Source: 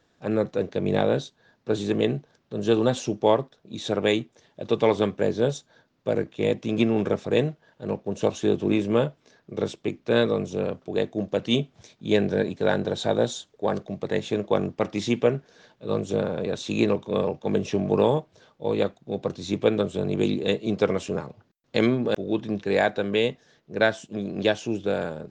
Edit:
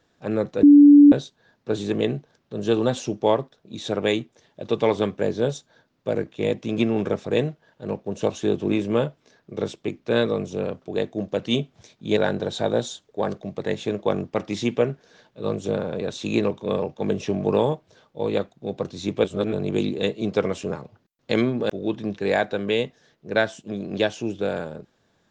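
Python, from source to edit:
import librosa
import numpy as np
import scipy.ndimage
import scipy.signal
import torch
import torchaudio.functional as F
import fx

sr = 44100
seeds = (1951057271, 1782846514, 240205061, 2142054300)

y = fx.edit(x, sr, fx.bleep(start_s=0.63, length_s=0.49, hz=289.0, db=-6.5),
    fx.cut(start_s=12.17, length_s=0.45),
    fx.reverse_span(start_s=19.69, length_s=0.29), tone=tone)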